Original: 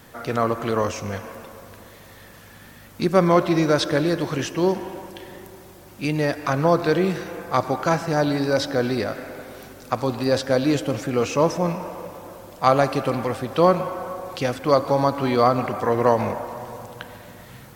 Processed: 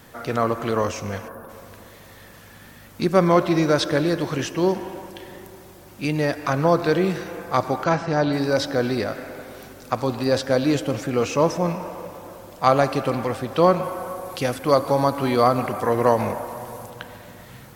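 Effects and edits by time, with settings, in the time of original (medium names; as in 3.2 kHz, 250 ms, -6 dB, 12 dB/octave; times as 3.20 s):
1.28–1.49 s: time-frequency box 1.8–9.2 kHz -15 dB
7.84–8.33 s: low-pass 5 kHz
13.83–16.90 s: peaking EQ 11 kHz +10 dB 0.63 oct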